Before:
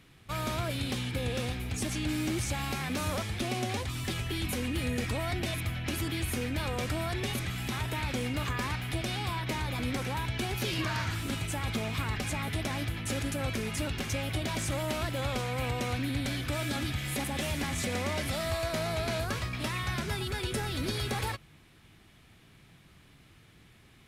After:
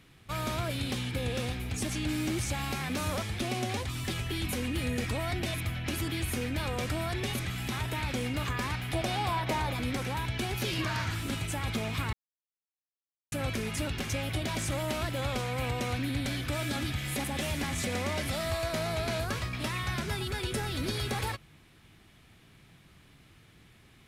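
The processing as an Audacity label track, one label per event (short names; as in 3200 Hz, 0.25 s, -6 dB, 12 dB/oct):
8.930000	9.730000	bell 740 Hz +8.5 dB 1.2 oct
12.130000	13.320000	mute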